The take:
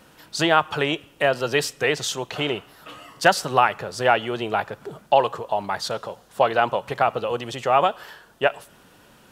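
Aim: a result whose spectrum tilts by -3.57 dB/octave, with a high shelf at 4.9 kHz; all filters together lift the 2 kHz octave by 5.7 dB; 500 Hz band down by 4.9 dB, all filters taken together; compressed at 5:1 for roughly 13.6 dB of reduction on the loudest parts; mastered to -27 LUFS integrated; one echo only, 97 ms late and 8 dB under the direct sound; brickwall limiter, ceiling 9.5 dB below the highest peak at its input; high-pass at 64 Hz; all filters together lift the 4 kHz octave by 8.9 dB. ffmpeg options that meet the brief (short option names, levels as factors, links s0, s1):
-af "highpass=64,equalizer=f=500:t=o:g=-7,equalizer=f=2000:t=o:g=5,equalizer=f=4000:t=o:g=7,highshelf=f=4900:g=7.5,acompressor=threshold=0.0562:ratio=5,alimiter=limit=0.106:level=0:latency=1,aecho=1:1:97:0.398,volume=1.68"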